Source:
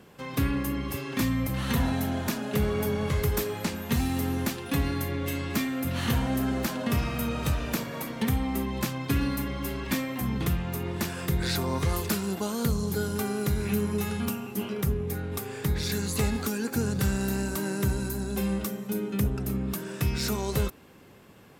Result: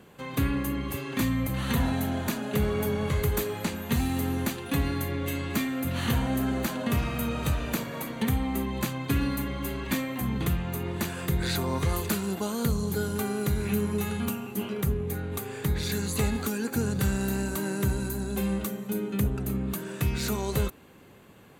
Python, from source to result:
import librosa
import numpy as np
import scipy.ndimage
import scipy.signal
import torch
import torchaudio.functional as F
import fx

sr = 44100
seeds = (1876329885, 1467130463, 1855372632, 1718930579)

y = fx.notch(x, sr, hz=5300.0, q=5.4)